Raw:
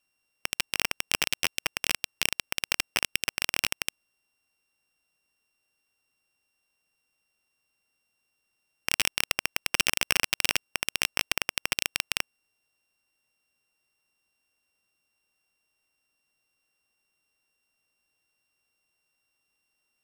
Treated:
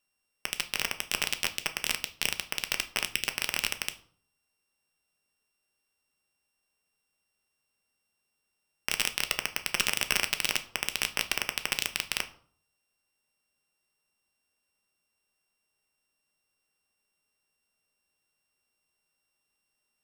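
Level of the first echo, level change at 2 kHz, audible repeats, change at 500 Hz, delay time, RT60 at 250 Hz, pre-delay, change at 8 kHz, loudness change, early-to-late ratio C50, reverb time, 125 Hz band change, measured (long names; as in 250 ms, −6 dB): no echo audible, −2.0 dB, no echo audible, −1.5 dB, no echo audible, 0.60 s, 5 ms, −2.0 dB, −2.0 dB, 15.0 dB, 0.55 s, −2.0 dB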